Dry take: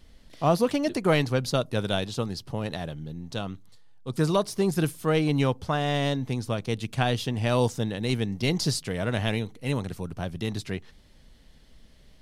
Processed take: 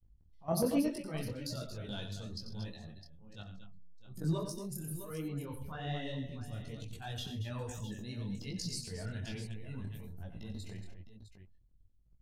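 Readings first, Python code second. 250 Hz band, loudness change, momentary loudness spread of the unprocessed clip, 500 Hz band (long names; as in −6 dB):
−11.0 dB, −12.5 dB, 11 LU, −15.0 dB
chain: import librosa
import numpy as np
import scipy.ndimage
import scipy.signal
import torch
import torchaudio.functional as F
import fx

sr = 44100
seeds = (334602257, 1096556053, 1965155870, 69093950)

y = fx.bin_expand(x, sr, power=2.0)
y = fx.low_shelf(y, sr, hz=140.0, db=6.0)
y = fx.level_steps(y, sr, step_db=21)
y = fx.transient(y, sr, attack_db=-11, sustain_db=10)
y = fx.echo_multitap(y, sr, ms=(43, 90, 130, 224, 233, 658), db=(-17.0, -9.5, -17.0, -19.0, -11.0, -12.5))
y = fx.detune_double(y, sr, cents=40)
y = y * 10.0 ** (5.5 / 20.0)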